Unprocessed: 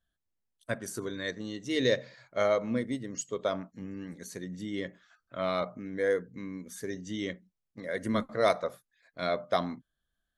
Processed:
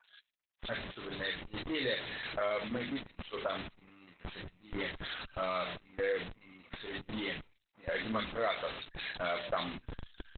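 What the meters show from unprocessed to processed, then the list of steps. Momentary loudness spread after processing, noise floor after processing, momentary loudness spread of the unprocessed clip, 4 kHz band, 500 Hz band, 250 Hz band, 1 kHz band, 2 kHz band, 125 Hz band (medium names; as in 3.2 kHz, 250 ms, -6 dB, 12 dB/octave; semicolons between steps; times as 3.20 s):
13 LU, -80 dBFS, 14 LU, +0.5 dB, -7.0 dB, -7.5 dB, -3.5 dB, -0.5 dB, -6.0 dB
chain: zero-crossing glitches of -24 dBFS; peaking EQ 1.7 kHz +12.5 dB 2.7 oct; band-stop 7.6 kHz, Q 5.4; gate -28 dBFS, range -17 dB; spectral noise reduction 12 dB; treble shelf 3.4 kHz +8 dB; hum notches 50/100/150/200/250/300/350/400/450 Hz; bands offset in time lows, highs 40 ms, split 1.7 kHz; in parallel at -7 dB: Schmitt trigger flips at -34 dBFS; on the sum: compression 2:1, threshold -40 dBFS, peak gain reduction 15 dB; Opus 8 kbps 48 kHz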